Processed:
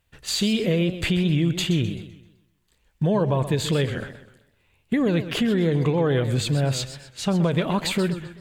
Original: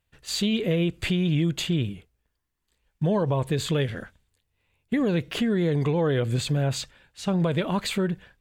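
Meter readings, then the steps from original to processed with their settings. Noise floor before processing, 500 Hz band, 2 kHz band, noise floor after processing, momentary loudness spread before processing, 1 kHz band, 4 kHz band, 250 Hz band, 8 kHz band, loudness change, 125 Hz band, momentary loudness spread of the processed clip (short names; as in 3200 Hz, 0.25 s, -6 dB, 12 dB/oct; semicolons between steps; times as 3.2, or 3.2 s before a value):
-78 dBFS, +2.5 dB, +3.0 dB, -67 dBFS, 7 LU, +2.5 dB, +3.5 dB, +2.5 dB, +3.5 dB, +2.5 dB, +2.5 dB, 7 LU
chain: in parallel at +1 dB: compressor, threshold -34 dBFS, peak gain reduction 13.5 dB; on the sum: warbling echo 0.129 s, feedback 39%, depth 163 cents, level -12 dB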